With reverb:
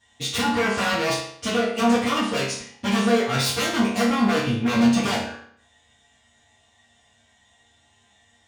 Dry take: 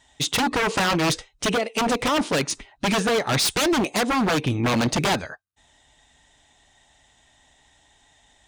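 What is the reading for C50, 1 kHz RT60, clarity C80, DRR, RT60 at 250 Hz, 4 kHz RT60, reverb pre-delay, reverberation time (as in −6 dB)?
3.5 dB, 0.60 s, 7.5 dB, −11.0 dB, 0.60 s, 0.55 s, 4 ms, 0.60 s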